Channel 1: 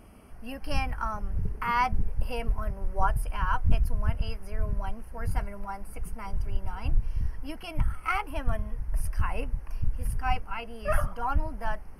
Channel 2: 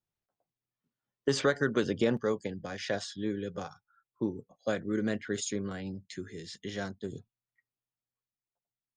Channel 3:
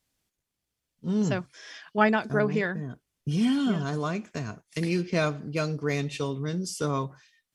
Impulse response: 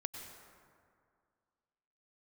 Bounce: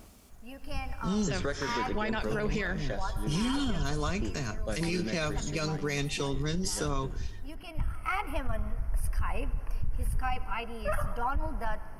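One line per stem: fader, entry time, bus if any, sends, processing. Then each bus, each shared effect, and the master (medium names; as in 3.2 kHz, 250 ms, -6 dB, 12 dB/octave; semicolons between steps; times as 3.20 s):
-0.5 dB, 0.00 s, send -11 dB, auto duck -12 dB, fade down 0.20 s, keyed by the third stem
-9.0 dB, 0.00 s, send -3.5 dB, none
-3.5 dB, 0.00 s, no send, treble shelf 2.3 kHz +10.5 dB; three bands compressed up and down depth 40%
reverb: on, RT60 2.2 s, pre-delay 88 ms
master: peak limiter -21 dBFS, peak gain reduction 10.5 dB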